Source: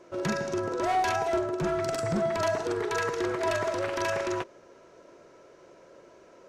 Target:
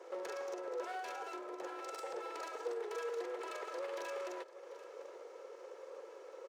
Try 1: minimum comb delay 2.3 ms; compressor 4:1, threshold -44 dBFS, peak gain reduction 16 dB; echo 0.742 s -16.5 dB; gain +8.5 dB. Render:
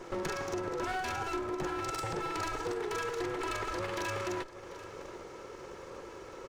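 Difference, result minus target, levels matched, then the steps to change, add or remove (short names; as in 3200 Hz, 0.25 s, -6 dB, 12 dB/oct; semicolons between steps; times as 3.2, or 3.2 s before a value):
500 Hz band -3.5 dB
add after compressor: ladder high-pass 440 Hz, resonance 60%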